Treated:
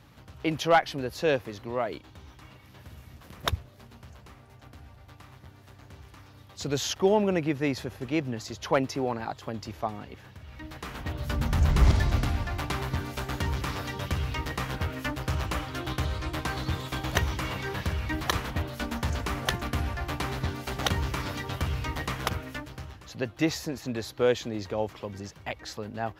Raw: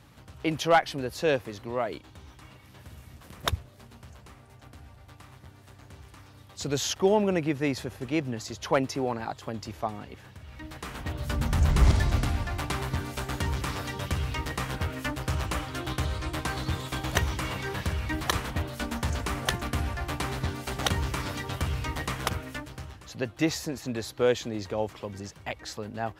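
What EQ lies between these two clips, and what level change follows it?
bell 8700 Hz -6.5 dB 0.54 oct; 0.0 dB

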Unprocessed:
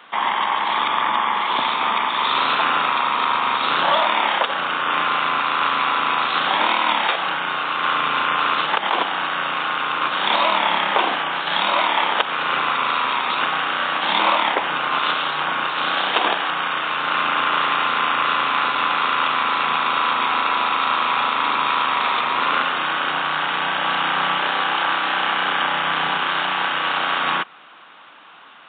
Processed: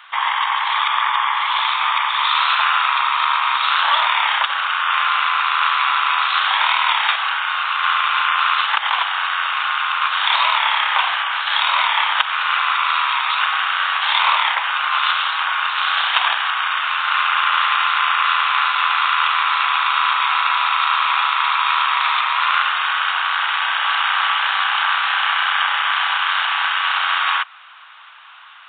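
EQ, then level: HPF 980 Hz 24 dB/oct; +3.5 dB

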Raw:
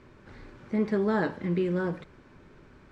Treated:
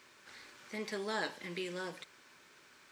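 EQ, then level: dynamic EQ 1400 Hz, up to -6 dB, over -47 dBFS, Q 1.8; differentiator; +12.5 dB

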